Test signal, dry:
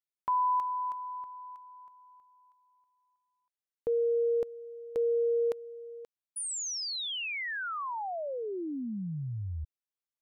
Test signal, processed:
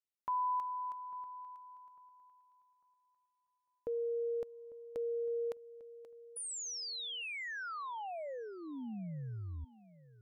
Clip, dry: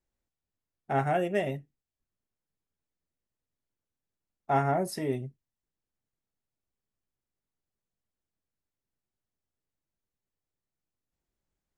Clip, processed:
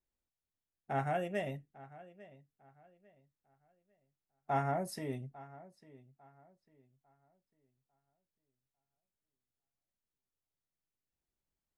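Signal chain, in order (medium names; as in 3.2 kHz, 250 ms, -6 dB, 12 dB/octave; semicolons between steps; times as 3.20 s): dynamic bell 370 Hz, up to -6 dB, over -45 dBFS, Q 3.2; filtered feedback delay 849 ms, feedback 31%, low-pass 3.5 kHz, level -18.5 dB; trim -6.5 dB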